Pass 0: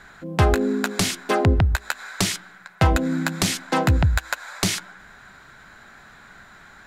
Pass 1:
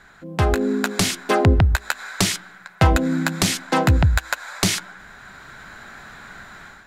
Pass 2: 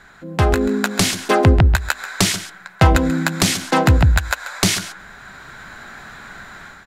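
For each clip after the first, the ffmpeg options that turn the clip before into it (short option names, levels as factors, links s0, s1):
-af "dynaudnorm=f=370:g=3:m=2.99,volume=0.708"
-af "aecho=1:1:136:0.211,volume=1.41"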